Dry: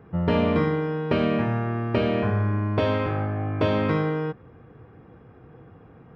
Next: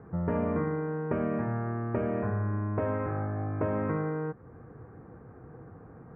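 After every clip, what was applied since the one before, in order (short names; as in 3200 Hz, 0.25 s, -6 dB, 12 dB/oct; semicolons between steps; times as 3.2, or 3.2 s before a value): inverse Chebyshev low-pass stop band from 3600 Hz, stop band 40 dB; compressor 1.5:1, threshold -39 dBFS, peak gain reduction 8 dB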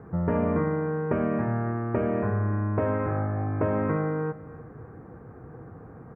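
feedback echo 0.298 s, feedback 35%, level -18 dB; gain +4 dB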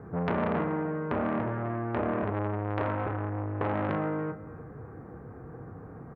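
doubler 29 ms -8.5 dB; core saturation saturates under 1300 Hz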